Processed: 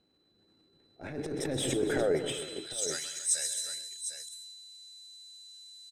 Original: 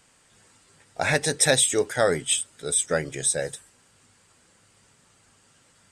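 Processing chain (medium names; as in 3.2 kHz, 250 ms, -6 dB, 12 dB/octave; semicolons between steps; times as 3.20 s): treble shelf 7.3 kHz +10 dB; crackle 510 per s -55 dBFS; in parallel at -3 dB: saturation -24.5 dBFS, distortion -4 dB; on the sum: whistle 4 kHz -40 dBFS; band-pass sweep 320 Hz -> 7.2 kHz, 1.96–2.91 s; transient shaper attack -12 dB, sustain +11 dB; ten-band graphic EQ 125 Hz -7 dB, 250 Hz -8 dB, 500 Hz -9 dB, 1 kHz -11 dB, 2 kHz -7 dB, 4 kHz -6 dB, 8 kHz -12 dB; on a send: multi-tap echo 128/196/274/414/752 ms -10.5/-15/-13.5/-17/-9.5 dB; 1.31–2.38 s: on the sum: swell ahead of each attack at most 21 dB/s; trim +6.5 dB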